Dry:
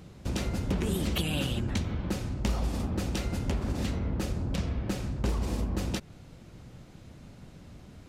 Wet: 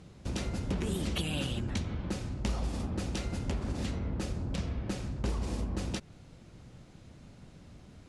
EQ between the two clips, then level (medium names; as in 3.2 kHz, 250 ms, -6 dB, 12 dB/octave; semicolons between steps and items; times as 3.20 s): elliptic low-pass 11 kHz, stop band 40 dB; -2.5 dB